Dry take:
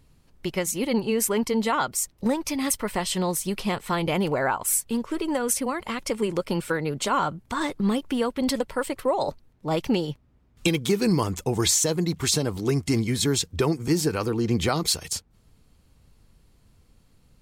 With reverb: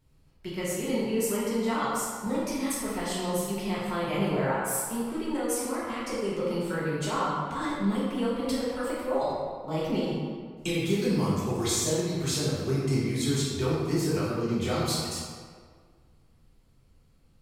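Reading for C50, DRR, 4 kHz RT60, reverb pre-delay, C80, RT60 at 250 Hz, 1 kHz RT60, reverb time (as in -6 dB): -1.5 dB, -8.5 dB, 1.1 s, 3 ms, 1.0 dB, 1.8 s, 1.8 s, 1.8 s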